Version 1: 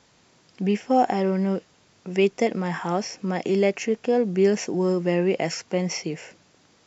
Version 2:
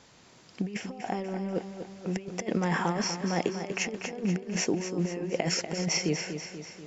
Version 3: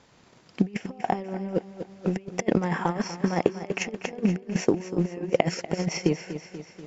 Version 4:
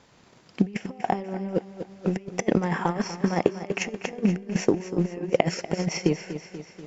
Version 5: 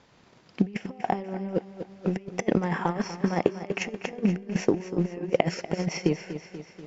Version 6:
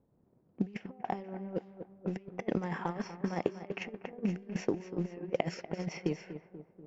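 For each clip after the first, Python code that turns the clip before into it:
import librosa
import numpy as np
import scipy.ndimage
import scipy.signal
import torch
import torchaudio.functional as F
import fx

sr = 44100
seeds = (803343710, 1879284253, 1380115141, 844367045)

y1 = fx.over_compress(x, sr, threshold_db=-27.0, ratio=-0.5)
y1 = fx.echo_feedback(y1, sr, ms=242, feedback_pct=56, wet_db=-9)
y1 = F.gain(torch.from_numpy(y1), -3.0).numpy()
y2 = fx.high_shelf(y1, sr, hz=3600.0, db=-7.5)
y2 = fx.transient(y2, sr, attack_db=10, sustain_db=-4)
y3 = fx.comb_fb(y2, sr, f0_hz=200.0, decay_s=1.2, harmonics='all', damping=0.0, mix_pct=40)
y3 = F.gain(torch.from_numpy(y3), 5.0).numpy()
y4 = scipy.signal.sosfilt(scipy.signal.butter(2, 5900.0, 'lowpass', fs=sr, output='sos'), y3)
y4 = F.gain(torch.from_numpy(y4), -1.5).numpy()
y5 = fx.env_lowpass(y4, sr, base_hz=420.0, full_db=-21.5)
y5 = F.gain(torch.from_numpy(y5), -8.5).numpy()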